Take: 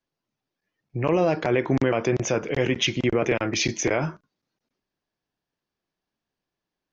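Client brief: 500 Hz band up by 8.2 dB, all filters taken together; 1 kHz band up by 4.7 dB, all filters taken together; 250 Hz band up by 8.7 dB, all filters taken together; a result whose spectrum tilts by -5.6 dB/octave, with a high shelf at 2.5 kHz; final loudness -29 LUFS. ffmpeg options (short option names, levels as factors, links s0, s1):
-af "equalizer=f=250:t=o:g=8.5,equalizer=f=500:t=o:g=7,equalizer=f=1000:t=o:g=4,highshelf=f=2500:g=-9,volume=0.251"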